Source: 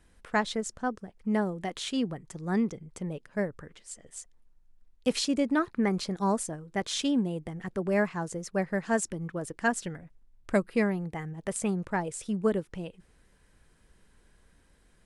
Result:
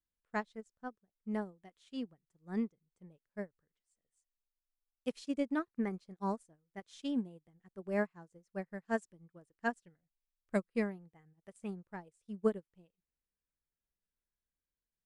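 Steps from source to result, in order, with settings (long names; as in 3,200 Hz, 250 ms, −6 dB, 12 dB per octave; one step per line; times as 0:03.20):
harmonic and percussive parts rebalanced percussive −3 dB
expander for the loud parts 2.5 to 1, over −42 dBFS
level −3 dB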